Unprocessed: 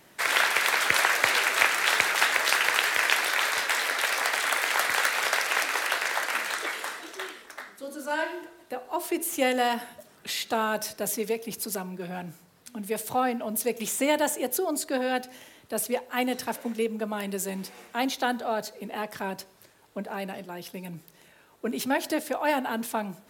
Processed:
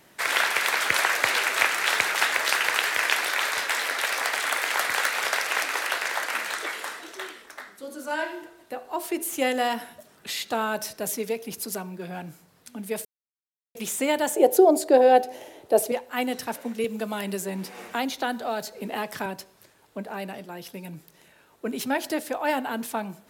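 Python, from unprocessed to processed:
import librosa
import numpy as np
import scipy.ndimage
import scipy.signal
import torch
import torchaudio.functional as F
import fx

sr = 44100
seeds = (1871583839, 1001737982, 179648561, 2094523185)

y = fx.band_shelf(x, sr, hz=520.0, db=13.0, octaves=1.7, at=(14.36, 15.92))
y = fx.band_squash(y, sr, depth_pct=70, at=(16.84, 19.26))
y = fx.edit(y, sr, fx.silence(start_s=13.05, length_s=0.7), tone=tone)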